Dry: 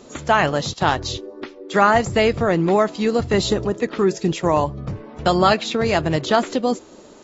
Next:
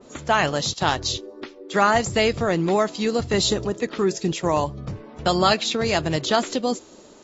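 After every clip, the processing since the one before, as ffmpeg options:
ffmpeg -i in.wav -af "adynamicequalizer=threshold=0.02:dfrequency=2900:dqfactor=0.7:tfrequency=2900:tqfactor=0.7:attack=5:release=100:ratio=0.375:range=4:mode=boostabove:tftype=highshelf,volume=-3.5dB" out.wav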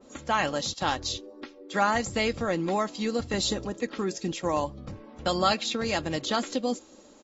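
ffmpeg -i in.wav -af "aecho=1:1:3.7:0.42,volume=-6.5dB" out.wav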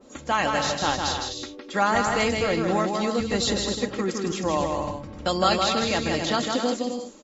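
ffmpeg -i in.wav -af "aecho=1:1:160|256|313.6|348.2|368.9:0.631|0.398|0.251|0.158|0.1,volume=2dB" out.wav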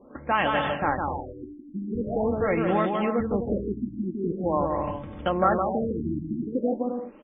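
ffmpeg -i in.wav -af "afftfilt=real='re*lt(b*sr/1024,340*pow(3700/340,0.5+0.5*sin(2*PI*0.44*pts/sr)))':imag='im*lt(b*sr/1024,340*pow(3700/340,0.5+0.5*sin(2*PI*0.44*pts/sr)))':win_size=1024:overlap=0.75" out.wav

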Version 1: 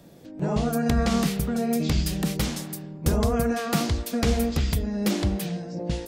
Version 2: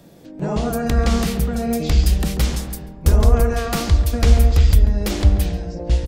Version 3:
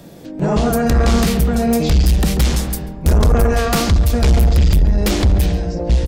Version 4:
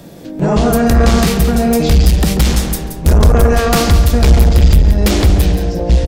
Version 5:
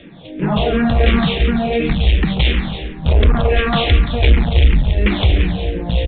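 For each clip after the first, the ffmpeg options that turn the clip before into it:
ffmpeg -i in.wav -filter_complex "[0:a]aeval=exprs='clip(val(0),-1,0.158)':channel_layout=same,asubboost=boost=9.5:cutoff=57,asplit=2[link_01][link_02];[link_02]adelay=139,lowpass=frequency=1000:poles=1,volume=-7dB,asplit=2[link_03][link_04];[link_04]adelay=139,lowpass=frequency=1000:poles=1,volume=0.5,asplit=2[link_05][link_06];[link_06]adelay=139,lowpass=frequency=1000:poles=1,volume=0.5,asplit=2[link_07][link_08];[link_08]adelay=139,lowpass=frequency=1000:poles=1,volume=0.5,asplit=2[link_09][link_10];[link_10]adelay=139,lowpass=frequency=1000:poles=1,volume=0.5,asplit=2[link_11][link_12];[link_12]adelay=139,lowpass=frequency=1000:poles=1,volume=0.5[link_13];[link_01][link_03][link_05][link_07][link_09][link_11][link_13]amix=inputs=7:normalize=0,volume=3.5dB" out.wav
ffmpeg -i in.wav -af "asoftclip=type=tanh:threshold=-15.5dB,volume=7.5dB" out.wav
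ffmpeg -i in.wav -af "aecho=1:1:176|352|528:0.335|0.0971|0.0282,volume=3.5dB" out.wav
ffmpeg -i in.wav -filter_complex "[0:a]aexciter=amount=3.1:drive=5.6:freq=2000,aresample=8000,aresample=44100,asplit=2[link_01][link_02];[link_02]afreqshift=-2.8[link_03];[link_01][link_03]amix=inputs=2:normalize=1,volume=-1.5dB" out.wav

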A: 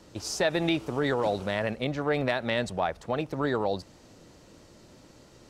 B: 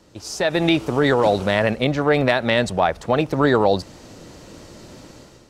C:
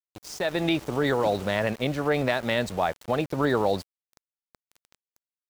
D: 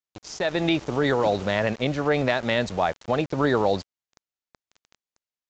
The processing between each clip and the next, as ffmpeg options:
ffmpeg -i in.wav -af "dynaudnorm=framelen=200:gausssize=5:maxgain=12dB" out.wav
ffmpeg -i in.wav -af "aeval=exprs='val(0)*gte(abs(val(0)),0.0282)':channel_layout=same,volume=-7dB" out.wav
ffmpeg -i in.wav -af "aresample=16000,aresample=44100,volume=2dB" out.wav

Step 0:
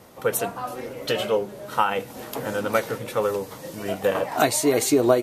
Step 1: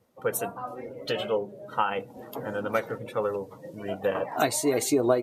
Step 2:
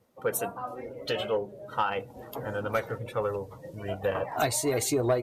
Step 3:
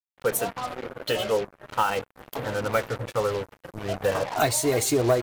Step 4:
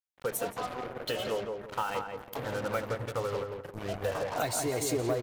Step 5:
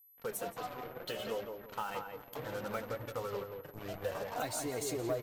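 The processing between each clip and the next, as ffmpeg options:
ffmpeg -i in.wav -af "afftdn=noise_reduction=17:noise_floor=-37,volume=-4.5dB" out.wav
ffmpeg -i in.wav -af "asubboost=boost=9.5:cutoff=77,asoftclip=type=tanh:threshold=-15dB" out.wav
ffmpeg -i in.wav -af "acrusher=bits=5:mix=0:aa=0.5,volume=4dB" out.wav
ffmpeg -i in.wav -filter_complex "[0:a]acompressor=threshold=-28dB:ratio=2,asplit=2[link_01][link_02];[link_02]adelay=171,lowpass=frequency=1700:poles=1,volume=-4dB,asplit=2[link_03][link_04];[link_04]adelay=171,lowpass=frequency=1700:poles=1,volume=0.28,asplit=2[link_05][link_06];[link_06]adelay=171,lowpass=frequency=1700:poles=1,volume=0.28,asplit=2[link_07][link_08];[link_08]adelay=171,lowpass=frequency=1700:poles=1,volume=0.28[link_09];[link_03][link_05][link_07][link_09]amix=inputs=4:normalize=0[link_10];[link_01][link_10]amix=inputs=2:normalize=0,volume=-4dB" out.wav
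ffmpeg -i in.wav -af "flanger=delay=3.2:depth=4:regen=55:speed=0.66:shape=triangular,aeval=exprs='val(0)+0.00126*sin(2*PI*12000*n/s)':channel_layout=same,volume=-2dB" out.wav

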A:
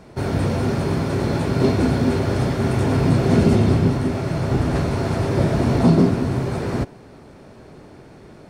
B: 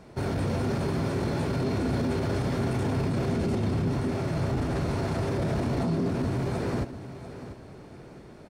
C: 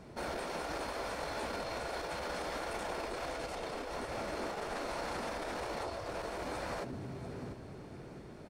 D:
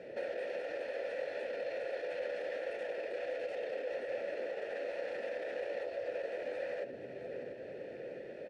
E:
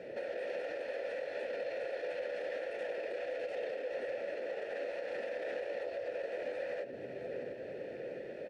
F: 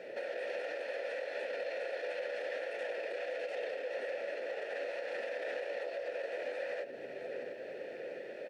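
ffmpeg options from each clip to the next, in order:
ffmpeg -i in.wav -af "alimiter=limit=-15.5dB:level=0:latency=1:release=16,aecho=1:1:693|1386|2079|2772:0.224|0.0806|0.029|0.0104,volume=-5dB" out.wav
ffmpeg -i in.wav -af "afftfilt=real='re*lt(hypot(re,im),0.126)':imag='im*lt(hypot(re,im),0.126)':win_size=1024:overlap=0.75,volume=-2.5dB" out.wav
ffmpeg -i in.wav -filter_complex "[0:a]acompressor=threshold=-44dB:ratio=6,asplit=3[link_01][link_02][link_03];[link_01]bandpass=frequency=530:width_type=q:width=8,volume=0dB[link_04];[link_02]bandpass=frequency=1840:width_type=q:width=8,volume=-6dB[link_05];[link_03]bandpass=frequency=2480:width_type=q:width=8,volume=-9dB[link_06];[link_04][link_05][link_06]amix=inputs=3:normalize=0,volume=17dB" out.wav
ffmpeg -i in.wav -af "alimiter=level_in=8dB:limit=-24dB:level=0:latency=1:release=162,volume=-8dB,volume=2dB" out.wav
ffmpeg -i in.wav -af "highpass=frequency=630:poles=1,volume=3.5dB" out.wav

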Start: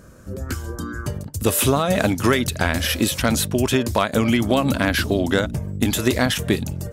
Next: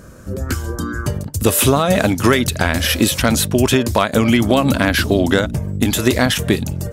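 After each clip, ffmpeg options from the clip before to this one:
ffmpeg -i in.wav -af "alimiter=limit=-7dB:level=0:latency=1:release=470,volume=6dB" out.wav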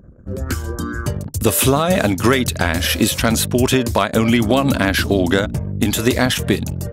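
ffmpeg -i in.wav -af "anlmdn=2.51,volume=-1dB" out.wav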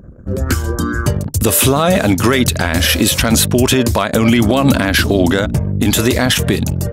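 ffmpeg -i in.wav -af "alimiter=level_in=7.5dB:limit=-1dB:release=50:level=0:latency=1,volume=-1dB" out.wav

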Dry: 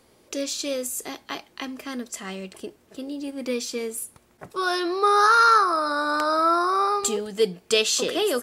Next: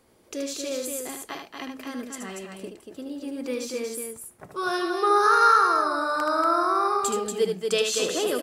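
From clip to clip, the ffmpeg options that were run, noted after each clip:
ffmpeg -i in.wav -filter_complex "[0:a]equalizer=frequency=4200:width_type=o:width=1.5:gain=-4,asplit=2[link_01][link_02];[link_02]aecho=0:1:75.8|236.2:0.501|0.562[link_03];[link_01][link_03]amix=inputs=2:normalize=0,volume=-3dB" out.wav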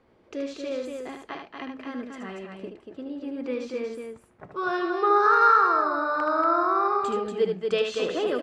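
ffmpeg -i in.wav -af "lowpass=2600" out.wav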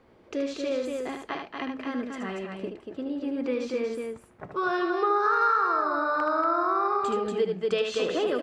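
ffmpeg -i in.wav -af "acompressor=threshold=-28dB:ratio=2.5,volume=3.5dB" out.wav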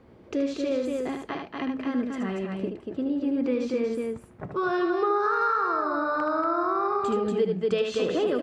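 ffmpeg -i in.wav -filter_complex "[0:a]equalizer=frequency=120:width=0.35:gain=9,asplit=2[link_01][link_02];[link_02]alimiter=limit=-22.5dB:level=0:latency=1:release=361,volume=-3dB[link_03];[link_01][link_03]amix=inputs=2:normalize=0,volume=-4.5dB" out.wav

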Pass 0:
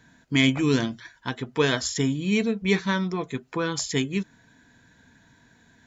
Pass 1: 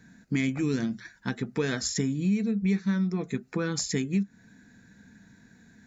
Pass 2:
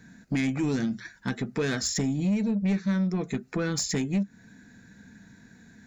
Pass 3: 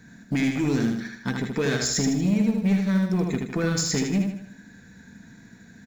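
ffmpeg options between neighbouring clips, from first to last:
ffmpeg -i in.wav -af "equalizer=frequency=200:width_type=o:width=0.33:gain=12,equalizer=frequency=630:width_type=o:width=0.33:gain=-5,equalizer=frequency=1000:width_type=o:width=0.33:gain=-10,equalizer=frequency=3150:width_type=o:width=0.33:gain=-12,acompressor=threshold=-24dB:ratio=5" out.wav
ffmpeg -i in.wav -af "asoftclip=type=tanh:threshold=-23dB,volume=3dB" out.wav
ffmpeg -i in.wav -filter_complex "[0:a]aecho=1:1:78|156|234|312|390|468:0.631|0.284|0.128|0.0575|0.0259|0.0116,asplit=2[link_01][link_02];[link_02]acrusher=bits=4:mode=log:mix=0:aa=0.000001,volume=-11.5dB[link_03];[link_01][link_03]amix=inputs=2:normalize=0" out.wav

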